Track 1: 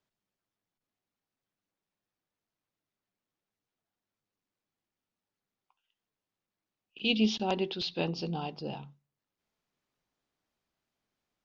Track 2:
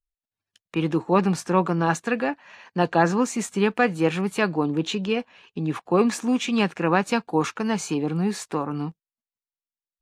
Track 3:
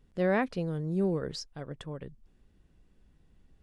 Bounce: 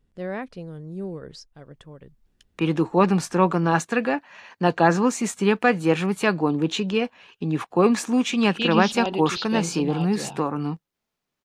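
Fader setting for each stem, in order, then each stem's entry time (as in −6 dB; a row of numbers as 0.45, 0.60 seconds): +3.0, +1.5, −4.0 decibels; 1.55, 1.85, 0.00 seconds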